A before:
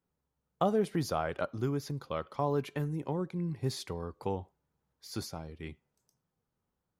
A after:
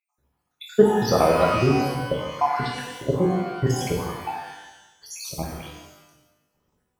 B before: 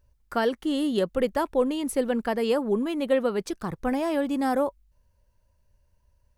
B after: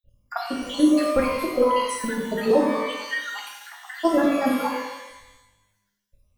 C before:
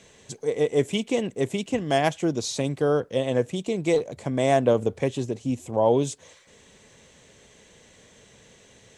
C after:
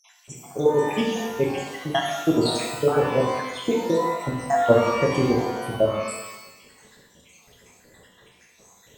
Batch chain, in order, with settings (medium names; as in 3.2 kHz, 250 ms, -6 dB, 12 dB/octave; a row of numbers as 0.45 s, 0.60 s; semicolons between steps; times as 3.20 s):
random holes in the spectrogram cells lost 78%; level held to a coarse grid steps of 9 dB; pitch-shifted reverb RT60 1 s, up +12 st, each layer -8 dB, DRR -2 dB; normalise loudness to -23 LUFS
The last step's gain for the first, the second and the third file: +16.0 dB, +9.5 dB, +7.0 dB